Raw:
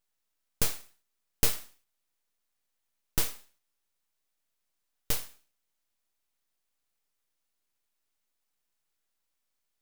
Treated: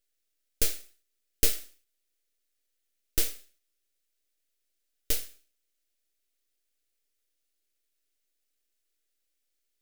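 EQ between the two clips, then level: static phaser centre 390 Hz, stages 4; +2.0 dB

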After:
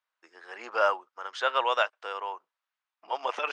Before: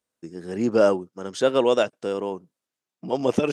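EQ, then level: ladder high-pass 810 Hz, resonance 30%; low-pass 3.2 kHz 12 dB/octave; +8.5 dB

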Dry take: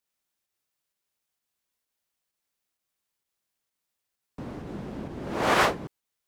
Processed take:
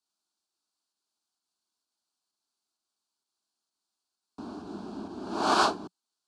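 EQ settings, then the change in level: cabinet simulation 120–9400 Hz, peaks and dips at 180 Hz +4 dB, 580 Hz +5 dB, 1.5 kHz +5 dB, 4.4 kHz +9 dB; static phaser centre 530 Hz, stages 6; 0.0 dB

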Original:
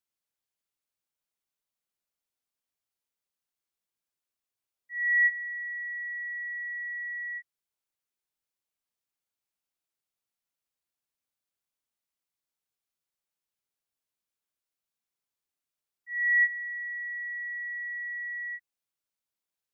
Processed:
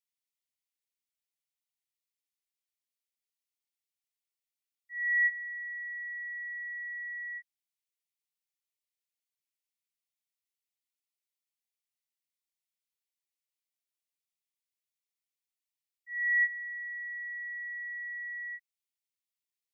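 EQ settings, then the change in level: brick-wall FIR high-pass 1.8 kHz; -3.5 dB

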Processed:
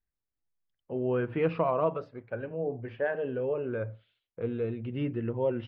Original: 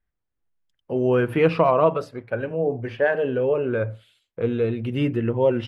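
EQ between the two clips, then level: distance through air 250 m; -8.5 dB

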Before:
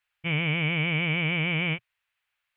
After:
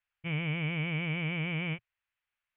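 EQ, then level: distance through air 190 m; bass shelf 96 Hz +7 dB; -6.5 dB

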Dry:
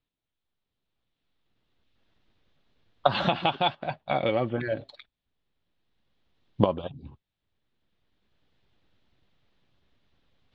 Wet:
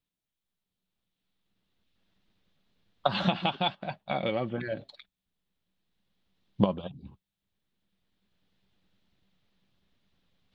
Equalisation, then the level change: peaking EQ 190 Hz +11.5 dB 0.27 oct; treble shelf 3.6 kHz +7 dB; -5.0 dB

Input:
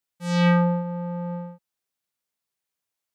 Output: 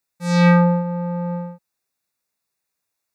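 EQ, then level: Butterworth band-stop 3.1 kHz, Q 5.2; +5.5 dB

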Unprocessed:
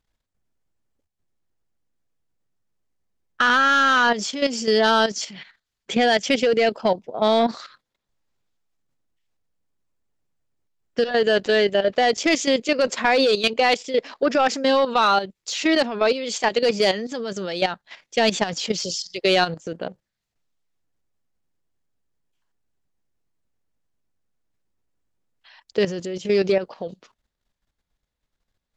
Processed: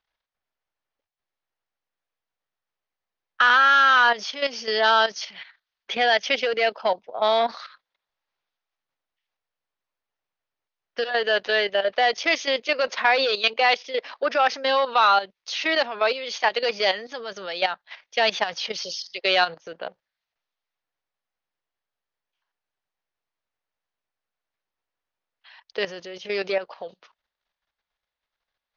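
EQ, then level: brick-wall FIR low-pass 6.7 kHz; three-band isolator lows -19 dB, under 560 Hz, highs -22 dB, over 5.2 kHz; +1.5 dB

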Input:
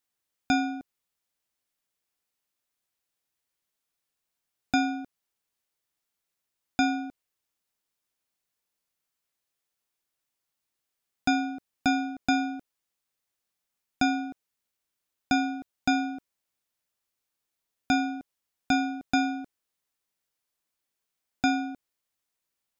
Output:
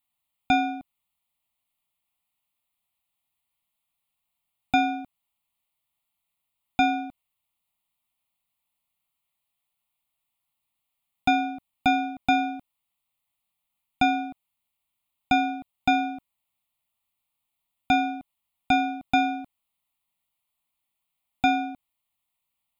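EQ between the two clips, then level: dynamic bell 1.2 kHz, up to +7 dB, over -41 dBFS, Q 0.94; static phaser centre 1.6 kHz, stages 6; +4.5 dB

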